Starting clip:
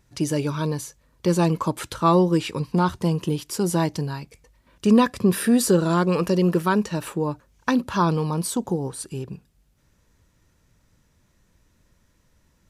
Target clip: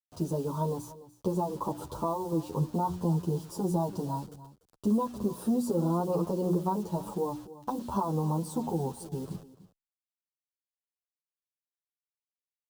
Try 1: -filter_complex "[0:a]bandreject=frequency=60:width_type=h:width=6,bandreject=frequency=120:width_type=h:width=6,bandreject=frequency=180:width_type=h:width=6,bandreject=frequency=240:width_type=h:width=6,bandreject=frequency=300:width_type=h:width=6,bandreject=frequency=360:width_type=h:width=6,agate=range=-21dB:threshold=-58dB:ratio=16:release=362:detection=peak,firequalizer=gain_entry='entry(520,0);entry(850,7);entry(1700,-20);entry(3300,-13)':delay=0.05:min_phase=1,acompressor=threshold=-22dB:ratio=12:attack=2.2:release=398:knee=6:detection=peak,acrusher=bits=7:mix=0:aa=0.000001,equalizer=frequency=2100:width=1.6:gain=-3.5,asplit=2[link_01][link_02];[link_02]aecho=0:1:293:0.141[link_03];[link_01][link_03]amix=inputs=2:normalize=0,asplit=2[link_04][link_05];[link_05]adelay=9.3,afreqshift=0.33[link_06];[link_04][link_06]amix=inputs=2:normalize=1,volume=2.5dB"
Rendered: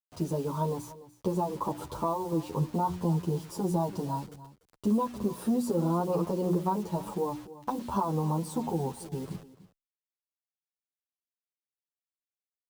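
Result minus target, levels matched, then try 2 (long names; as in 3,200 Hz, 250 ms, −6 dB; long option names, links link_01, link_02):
2,000 Hz band +5.5 dB
-filter_complex "[0:a]bandreject=frequency=60:width_type=h:width=6,bandreject=frequency=120:width_type=h:width=6,bandreject=frequency=180:width_type=h:width=6,bandreject=frequency=240:width_type=h:width=6,bandreject=frequency=300:width_type=h:width=6,bandreject=frequency=360:width_type=h:width=6,agate=range=-21dB:threshold=-58dB:ratio=16:release=362:detection=peak,firequalizer=gain_entry='entry(520,0);entry(850,7);entry(1700,-20);entry(3300,-13)':delay=0.05:min_phase=1,acompressor=threshold=-22dB:ratio=12:attack=2.2:release=398:knee=6:detection=peak,acrusher=bits=7:mix=0:aa=0.000001,equalizer=frequency=2100:width=1.6:gain=-14,asplit=2[link_01][link_02];[link_02]aecho=0:1:293:0.141[link_03];[link_01][link_03]amix=inputs=2:normalize=0,asplit=2[link_04][link_05];[link_05]adelay=9.3,afreqshift=0.33[link_06];[link_04][link_06]amix=inputs=2:normalize=1,volume=2.5dB"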